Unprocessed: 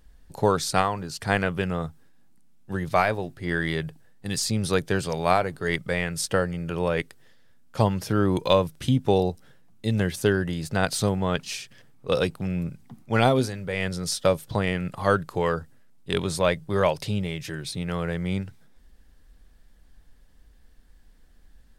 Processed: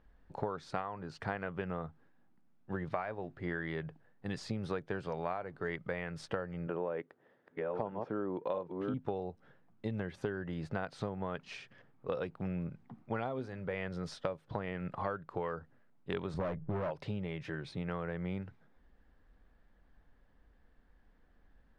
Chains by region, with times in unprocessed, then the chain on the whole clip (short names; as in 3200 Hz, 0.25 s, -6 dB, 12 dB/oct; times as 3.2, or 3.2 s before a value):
6.67–8.94 reverse delay 0.624 s, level -6 dB + HPF 360 Hz + tilt -4 dB/oct
16.34–16.91 tilt -3 dB/oct + overloaded stage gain 19 dB + mismatched tape noise reduction decoder only
whole clip: LPF 1400 Hz 12 dB/oct; tilt +2 dB/oct; compressor 12:1, threshold -31 dBFS; gain -1.5 dB